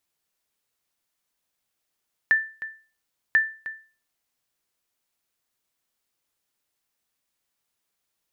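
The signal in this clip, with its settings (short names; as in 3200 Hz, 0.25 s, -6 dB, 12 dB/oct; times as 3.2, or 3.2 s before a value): sonar ping 1770 Hz, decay 0.37 s, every 1.04 s, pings 2, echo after 0.31 s, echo -14.5 dB -11.5 dBFS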